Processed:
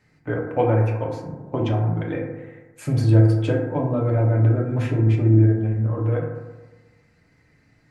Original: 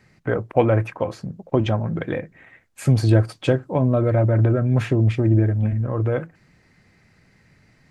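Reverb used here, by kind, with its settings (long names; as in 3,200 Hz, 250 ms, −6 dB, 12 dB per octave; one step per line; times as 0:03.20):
feedback delay network reverb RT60 1.2 s, low-frequency decay 1×, high-frequency decay 0.3×, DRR −1.5 dB
level −7 dB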